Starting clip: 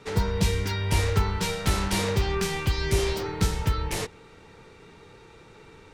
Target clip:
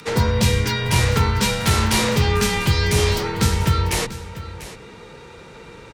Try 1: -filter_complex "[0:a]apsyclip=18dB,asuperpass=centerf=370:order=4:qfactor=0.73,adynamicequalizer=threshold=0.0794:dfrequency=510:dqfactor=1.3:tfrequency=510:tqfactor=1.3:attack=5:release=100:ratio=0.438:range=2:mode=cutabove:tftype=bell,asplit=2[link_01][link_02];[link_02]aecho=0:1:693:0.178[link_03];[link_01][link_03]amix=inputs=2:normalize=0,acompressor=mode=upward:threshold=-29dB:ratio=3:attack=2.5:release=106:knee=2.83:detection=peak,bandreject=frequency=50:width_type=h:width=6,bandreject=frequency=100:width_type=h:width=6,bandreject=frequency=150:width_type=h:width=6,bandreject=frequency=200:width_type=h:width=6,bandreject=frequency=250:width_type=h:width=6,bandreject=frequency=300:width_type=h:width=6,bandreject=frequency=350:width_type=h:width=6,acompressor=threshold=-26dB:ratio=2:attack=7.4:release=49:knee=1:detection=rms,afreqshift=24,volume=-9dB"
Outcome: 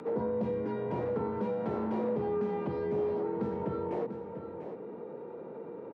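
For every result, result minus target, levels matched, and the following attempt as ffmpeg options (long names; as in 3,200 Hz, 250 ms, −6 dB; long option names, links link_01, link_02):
downward compressor: peak gain reduction +9.5 dB; 500 Hz band +9.5 dB
-filter_complex "[0:a]apsyclip=18dB,asuperpass=centerf=370:order=4:qfactor=0.73,adynamicequalizer=threshold=0.0794:dfrequency=510:dqfactor=1.3:tfrequency=510:tqfactor=1.3:attack=5:release=100:ratio=0.438:range=2:mode=cutabove:tftype=bell,asplit=2[link_01][link_02];[link_02]aecho=0:1:693:0.178[link_03];[link_01][link_03]amix=inputs=2:normalize=0,acompressor=mode=upward:threshold=-29dB:ratio=3:attack=2.5:release=106:knee=2.83:detection=peak,bandreject=frequency=50:width_type=h:width=6,bandreject=frequency=100:width_type=h:width=6,bandreject=frequency=150:width_type=h:width=6,bandreject=frequency=200:width_type=h:width=6,bandreject=frequency=250:width_type=h:width=6,bandreject=frequency=300:width_type=h:width=6,bandreject=frequency=350:width_type=h:width=6,afreqshift=24,volume=-9dB"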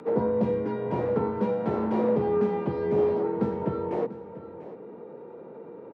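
500 Hz band +8.0 dB
-filter_complex "[0:a]apsyclip=18dB,adynamicequalizer=threshold=0.0794:dfrequency=510:dqfactor=1.3:tfrequency=510:tqfactor=1.3:attack=5:release=100:ratio=0.438:range=2:mode=cutabove:tftype=bell,asplit=2[link_01][link_02];[link_02]aecho=0:1:693:0.178[link_03];[link_01][link_03]amix=inputs=2:normalize=0,acompressor=mode=upward:threshold=-29dB:ratio=3:attack=2.5:release=106:knee=2.83:detection=peak,bandreject=frequency=50:width_type=h:width=6,bandreject=frequency=100:width_type=h:width=6,bandreject=frequency=150:width_type=h:width=6,bandreject=frequency=200:width_type=h:width=6,bandreject=frequency=250:width_type=h:width=6,bandreject=frequency=300:width_type=h:width=6,bandreject=frequency=350:width_type=h:width=6,afreqshift=24,volume=-9dB"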